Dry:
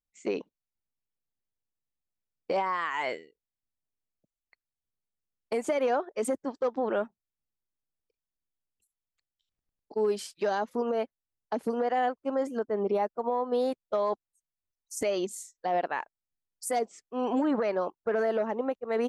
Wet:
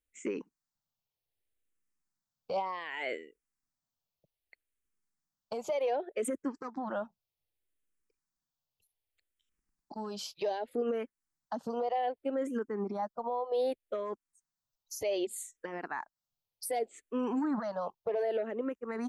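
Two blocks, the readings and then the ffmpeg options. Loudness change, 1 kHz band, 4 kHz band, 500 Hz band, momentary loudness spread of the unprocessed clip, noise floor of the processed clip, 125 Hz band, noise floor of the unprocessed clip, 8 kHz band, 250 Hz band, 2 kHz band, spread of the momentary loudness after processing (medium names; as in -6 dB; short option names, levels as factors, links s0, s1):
-5.0 dB, -6.0 dB, -2.5 dB, -5.5 dB, 9 LU, under -85 dBFS, no reading, under -85 dBFS, -3.0 dB, -4.0 dB, -6.0 dB, 10 LU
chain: -filter_complex "[0:a]alimiter=level_in=1.68:limit=0.0631:level=0:latency=1:release=239,volume=0.596,asplit=2[s0][s1];[s1]afreqshift=-0.65[s2];[s0][s2]amix=inputs=2:normalize=1,volume=1.88"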